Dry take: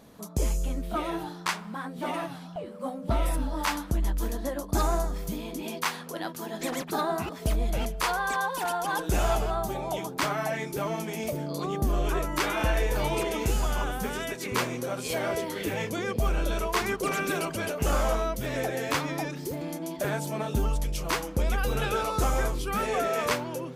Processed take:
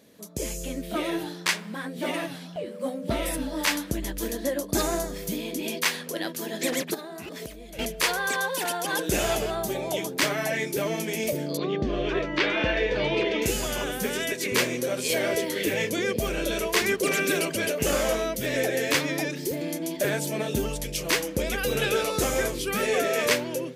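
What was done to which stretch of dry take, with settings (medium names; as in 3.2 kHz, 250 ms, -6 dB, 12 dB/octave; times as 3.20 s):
6.94–7.79 s: compression 12:1, threshold -36 dBFS
11.57–13.42 s: low-pass 4.1 kHz 24 dB/octave
whole clip: high-pass 300 Hz 6 dB/octave; high-order bell 1 kHz -10 dB 1.2 oct; level rider gain up to 7 dB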